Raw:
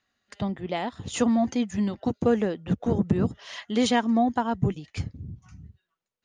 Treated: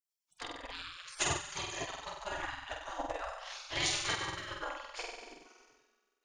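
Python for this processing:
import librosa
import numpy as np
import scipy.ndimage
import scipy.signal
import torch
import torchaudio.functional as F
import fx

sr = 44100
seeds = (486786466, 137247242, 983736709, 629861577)

y = fx.low_shelf(x, sr, hz=400.0, db=4.5)
y = fx.room_flutter(y, sr, wall_m=8.1, rt60_s=1.4)
y = fx.transient(y, sr, attack_db=5, sustain_db=-6)
y = fx.spec_gate(y, sr, threshold_db=-25, keep='weak')
y = F.gain(torch.from_numpy(y), -2.0).numpy()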